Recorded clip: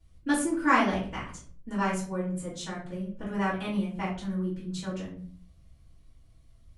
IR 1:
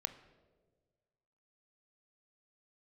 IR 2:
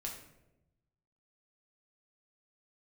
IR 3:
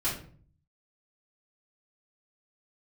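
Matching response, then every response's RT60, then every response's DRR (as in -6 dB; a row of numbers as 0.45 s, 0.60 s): 3; 1.5 s, 0.95 s, 0.50 s; 9.5 dB, -1.5 dB, -10.0 dB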